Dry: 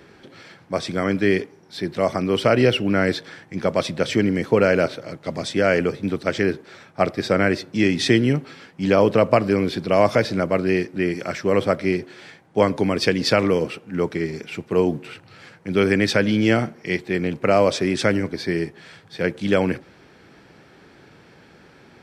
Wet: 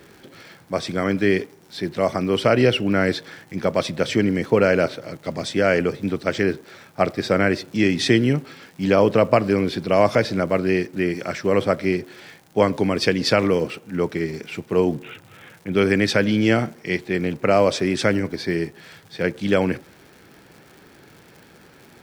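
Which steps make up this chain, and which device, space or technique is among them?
14.97–15.75 s: steep low-pass 3.7 kHz 96 dB/octave; vinyl LP (crackle 130 per s -37 dBFS; white noise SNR 44 dB)

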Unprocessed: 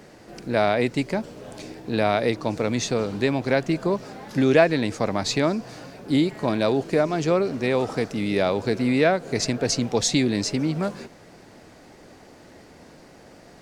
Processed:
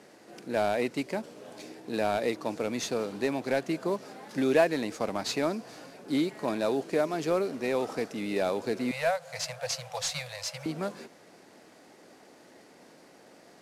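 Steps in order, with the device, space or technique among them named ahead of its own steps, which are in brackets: early wireless headset (high-pass 220 Hz 12 dB/octave; CVSD coder 64 kbps); 8.91–10.66 s: Chebyshev band-stop 160–510 Hz, order 5; trim -5.5 dB

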